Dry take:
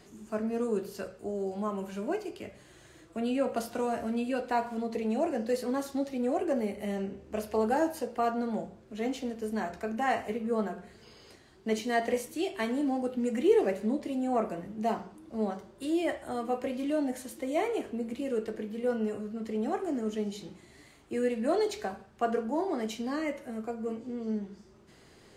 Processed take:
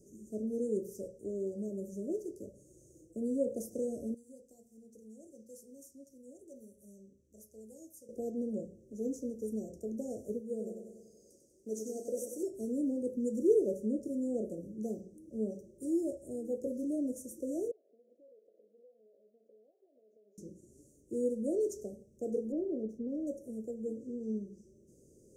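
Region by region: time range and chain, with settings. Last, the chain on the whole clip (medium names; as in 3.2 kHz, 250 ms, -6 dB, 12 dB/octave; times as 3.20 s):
4.14–8.09 s: amplifier tone stack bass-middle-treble 5-5-5 + hum notches 60/120/180/240/300/360/420/480 Hz
10.40–12.43 s: bass shelf 340 Hz -11.5 dB + feedback delay 96 ms, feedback 58%, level -5.5 dB
17.71–20.38 s: ladder band-pass 760 Hz, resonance 70% + compression, threshold -54 dBFS
22.52–23.27 s: low-pass 1.4 kHz + sliding maximum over 3 samples
whole clip: Chebyshev band-stop 560–5800 Hz, order 5; bass shelf 130 Hz -3.5 dB; trim -2 dB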